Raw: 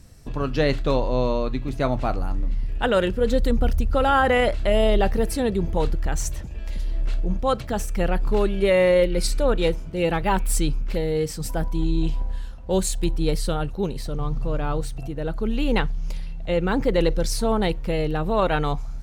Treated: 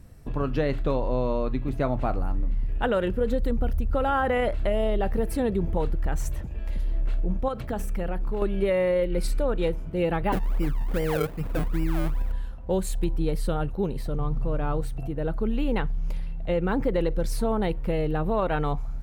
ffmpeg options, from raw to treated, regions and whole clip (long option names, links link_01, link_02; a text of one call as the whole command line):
ffmpeg -i in.wav -filter_complex "[0:a]asettb=1/sr,asplit=3[link_01][link_02][link_03];[link_01]atrim=end=7.484[link_04];[link_02]atrim=start=7.48:end=8.42,asetpts=PTS-STARTPTS,afade=type=in:duration=0.004:curve=qsin,afade=type=out:start_time=0.936:duration=0.004:curve=qsin,bandreject=frequency=48.88:width_type=h:width=4,bandreject=frequency=97.76:width_type=h:width=4,bandreject=frequency=146.64:width_type=h:width=4,bandreject=frequency=195.52:width_type=h:width=4,bandreject=frequency=244.4:width_type=h:width=4,bandreject=frequency=293.28:width_type=h:width=4,bandreject=frequency=342.16:width_type=h:width=4,bandreject=frequency=391.04:width_type=h:width=4,acompressor=threshold=-23dB:ratio=6:attack=3.2:release=140:knee=1:detection=peak[link_05];[link_03]atrim=start=8.416[link_06];[link_04][link_05]acrossfade=duration=0.004:curve1=hsin:curve2=qsin[link_07];[link_07][link_06]acrossfade=duration=0.004:curve1=qsin:curve2=hsin,asettb=1/sr,asplit=3[link_08][link_09][link_10];[link_08]atrim=end=10.324[link_11];[link_09]atrim=start=10.32:end=12.32,asetpts=PTS-STARTPTS,afade=type=in:duration=0.004:curve=qsin,afade=type=out:start_time=1.996:duration=0.004:curve=qsin,lowpass=frequency=4200:width=0.5412,lowpass=frequency=4200:width=1.3066,acrusher=samples=33:mix=1:aa=0.000001:lfo=1:lforange=33:lforate=2.5[link_12];[link_10]atrim=start=12.316[link_13];[link_11][link_12]acrossfade=duration=0.004:curve1=hsin:curve2=qsin[link_14];[link_14][link_13]acrossfade=duration=0.004:curve1=qsin:curve2=hsin,equalizer=frequency=5800:width=0.63:gain=-11.5,acompressor=threshold=-20dB:ratio=6" out.wav